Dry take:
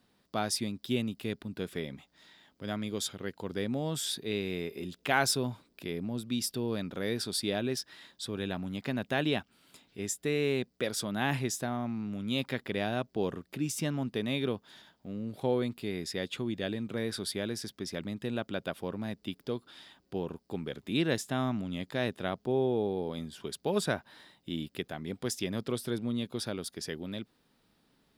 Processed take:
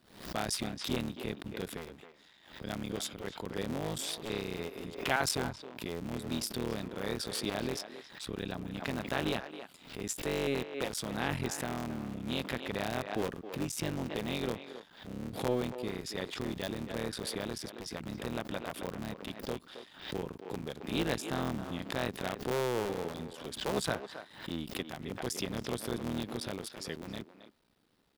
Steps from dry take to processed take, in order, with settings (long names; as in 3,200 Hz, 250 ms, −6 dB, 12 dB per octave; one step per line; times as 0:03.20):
sub-harmonics by changed cycles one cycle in 3, muted
far-end echo of a speakerphone 270 ms, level −10 dB
background raised ahead of every attack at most 99 dB per second
level −2 dB